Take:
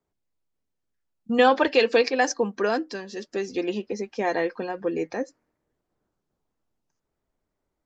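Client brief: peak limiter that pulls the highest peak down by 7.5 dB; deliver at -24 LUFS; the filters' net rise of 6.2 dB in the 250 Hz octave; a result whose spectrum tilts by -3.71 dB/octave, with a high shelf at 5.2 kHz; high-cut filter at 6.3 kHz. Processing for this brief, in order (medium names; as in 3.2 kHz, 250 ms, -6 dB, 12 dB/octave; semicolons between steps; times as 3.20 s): low-pass 6.3 kHz; peaking EQ 250 Hz +7.5 dB; treble shelf 5.2 kHz +6.5 dB; trim +0.5 dB; peak limiter -11.5 dBFS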